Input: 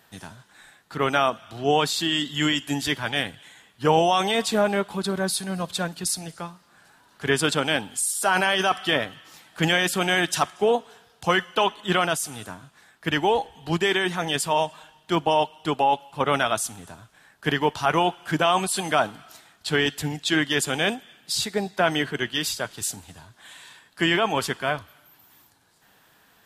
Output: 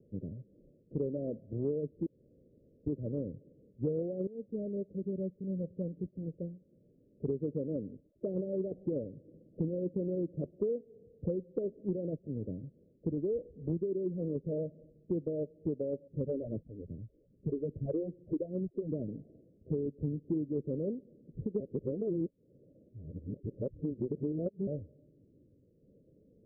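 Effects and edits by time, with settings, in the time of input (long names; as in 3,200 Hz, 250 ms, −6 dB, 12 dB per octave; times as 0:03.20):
0:02.06–0:02.86: fill with room tone
0:04.27–0:08.22: fade in, from −18 dB
0:16.07–0:19.08: all-pass phaser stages 4, 2.5 Hz, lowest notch 140–1,200 Hz
0:20.07–0:20.80: tilt shelving filter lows +3 dB
0:21.60–0:24.67: reverse
whole clip: Butterworth low-pass 560 Hz 96 dB per octave; downward compressor 6 to 1, threshold −35 dBFS; level +3.5 dB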